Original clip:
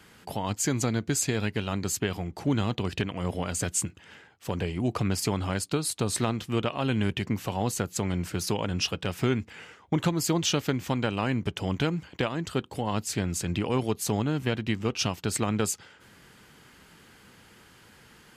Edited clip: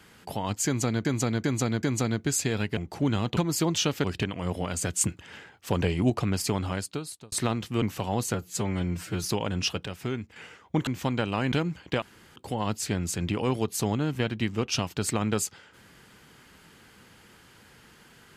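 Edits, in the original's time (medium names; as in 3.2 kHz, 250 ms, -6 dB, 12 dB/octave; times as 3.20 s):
0.66–1.05 s: loop, 4 plays
1.60–2.22 s: delete
3.79–4.88 s: gain +4.5 dB
5.41–6.10 s: fade out
6.60–7.30 s: delete
7.82–8.42 s: stretch 1.5×
9.04–9.54 s: gain -6 dB
10.05–10.72 s: move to 2.82 s
11.37–11.79 s: delete
12.29–12.63 s: room tone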